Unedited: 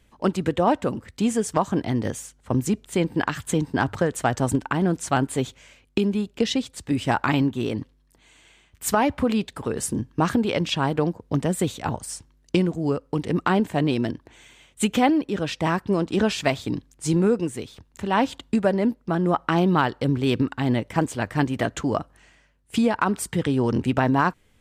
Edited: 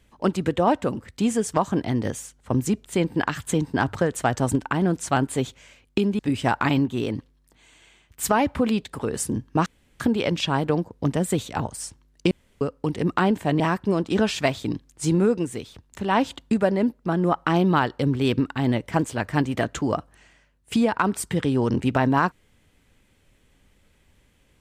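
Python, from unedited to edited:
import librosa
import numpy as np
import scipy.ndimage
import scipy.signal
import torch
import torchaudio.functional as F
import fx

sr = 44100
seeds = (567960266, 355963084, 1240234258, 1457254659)

y = fx.edit(x, sr, fx.cut(start_s=6.19, length_s=0.63),
    fx.insert_room_tone(at_s=10.29, length_s=0.34),
    fx.room_tone_fill(start_s=12.6, length_s=0.3),
    fx.cut(start_s=13.89, length_s=1.73), tone=tone)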